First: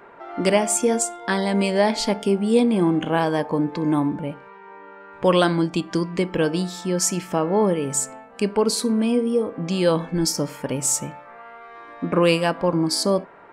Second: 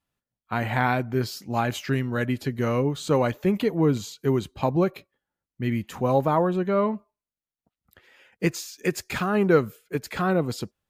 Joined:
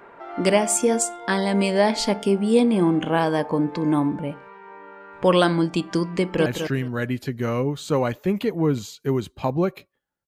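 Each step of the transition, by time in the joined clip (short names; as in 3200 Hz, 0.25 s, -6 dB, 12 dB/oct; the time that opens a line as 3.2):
first
6.16–6.46 echo throw 0.21 s, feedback 20%, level -7.5 dB
6.46 switch to second from 1.65 s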